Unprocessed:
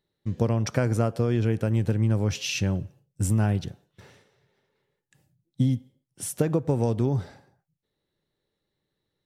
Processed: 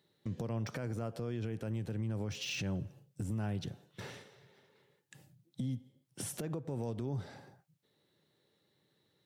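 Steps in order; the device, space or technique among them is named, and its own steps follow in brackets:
broadcast voice chain (high-pass filter 99 Hz 24 dB per octave; de-essing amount 90%; downward compressor 4 to 1, threshold −40 dBFS, peak gain reduction 18.5 dB; parametric band 3,500 Hz +2 dB; brickwall limiter −34.5 dBFS, peak gain reduction 10.5 dB)
level +5.5 dB

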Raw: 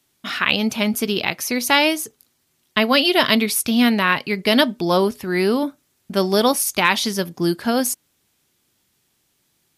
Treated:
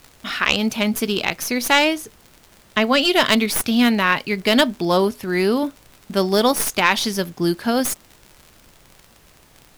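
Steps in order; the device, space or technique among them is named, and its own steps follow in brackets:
0:01.85–0:03.03: high-shelf EQ 5,700 Hz −9.5 dB
record under a worn stylus (stylus tracing distortion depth 0.038 ms; surface crackle 70 per second −31 dBFS; pink noise bed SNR 31 dB)

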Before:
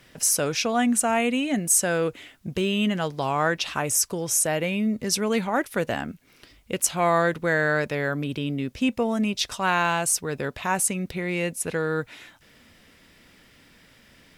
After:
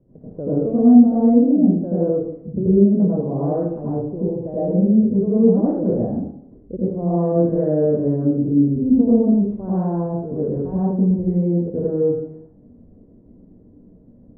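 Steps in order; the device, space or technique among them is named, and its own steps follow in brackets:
next room (low-pass filter 500 Hz 24 dB per octave; convolution reverb RT60 0.70 s, pre-delay 81 ms, DRR −9.5 dB)

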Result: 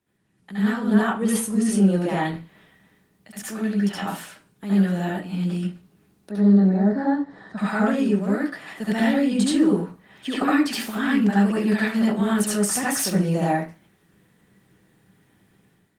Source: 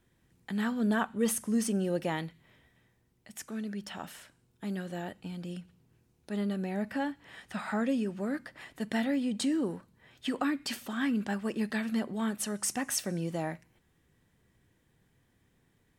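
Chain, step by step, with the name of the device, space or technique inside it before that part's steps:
0:06.31–0:07.58: drawn EQ curve 160 Hz 0 dB, 290 Hz +3 dB, 1,800 Hz −6 dB, 2,800 Hz −27 dB, 4,000 Hz −6 dB, 6,100 Hz −14 dB, 14,000 Hz −28 dB
far-field microphone of a smart speaker (convolution reverb RT60 0.30 s, pre-delay 64 ms, DRR −6.5 dB; high-pass filter 92 Hz 24 dB per octave; automatic gain control gain up to 11 dB; level −5.5 dB; Opus 24 kbit/s 48,000 Hz)

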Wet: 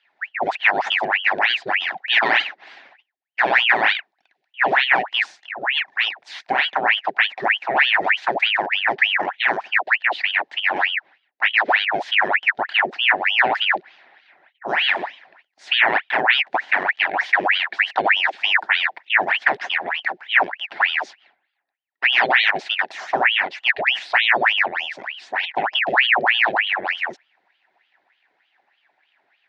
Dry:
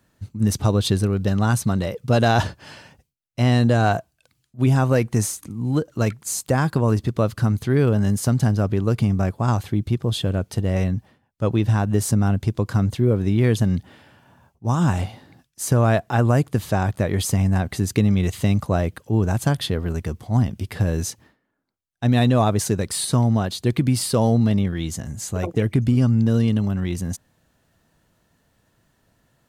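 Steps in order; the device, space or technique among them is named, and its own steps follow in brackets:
voice changer toy (ring modulator whose carrier an LFO sweeps 1,700 Hz, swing 85%, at 3.3 Hz; loudspeaker in its box 470–3,700 Hz, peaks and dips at 480 Hz −10 dB, 760 Hz +6 dB, 1,200 Hz −9 dB, 1,800 Hz +8 dB, 3,100 Hz −4 dB)
level +3 dB

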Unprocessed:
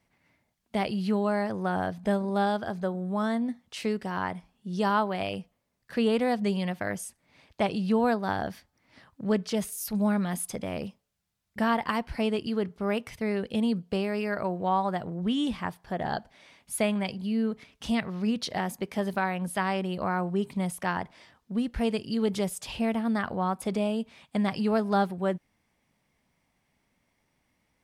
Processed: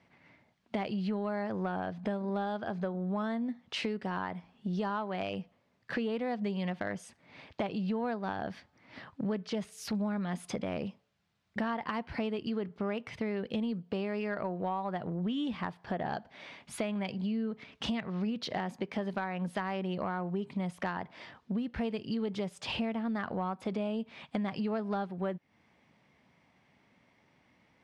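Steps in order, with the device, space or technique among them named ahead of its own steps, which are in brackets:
AM radio (band-pass filter 100–3,800 Hz; downward compressor 6 to 1, threshold −39 dBFS, peak gain reduction 17.5 dB; soft clipping −28.5 dBFS, distortion −27 dB)
level +7.5 dB

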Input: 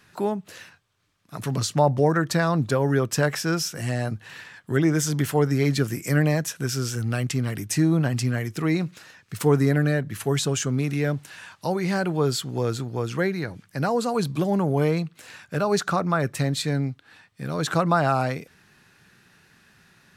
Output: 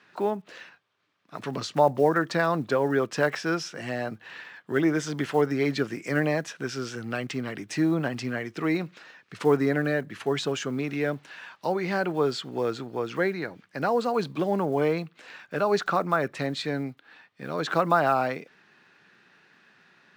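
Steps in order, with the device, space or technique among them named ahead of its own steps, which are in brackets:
early digital voice recorder (band-pass filter 260–3,700 Hz; one scale factor per block 7 bits)

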